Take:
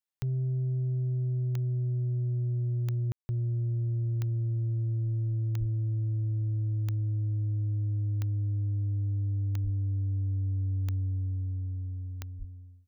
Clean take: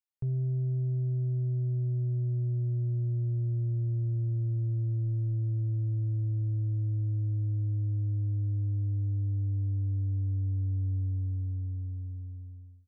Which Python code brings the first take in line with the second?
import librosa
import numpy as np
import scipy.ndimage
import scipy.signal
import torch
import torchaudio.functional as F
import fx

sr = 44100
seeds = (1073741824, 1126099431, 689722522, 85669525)

y = fx.fix_declick_ar(x, sr, threshold=10.0)
y = fx.highpass(y, sr, hz=140.0, slope=24, at=(5.59, 5.71), fade=0.02)
y = fx.highpass(y, sr, hz=140.0, slope=24, at=(9.63, 9.75), fade=0.02)
y = fx.highpass(y, sr, hz=140.0, slope=24, at=(12.38, 12.5), fade=0.02)
y = fx.fix_ambience(y, sr, seeds[0], print_start_s=12.36, print_end_s=12.86, start_s=3.12, end_s=3.29)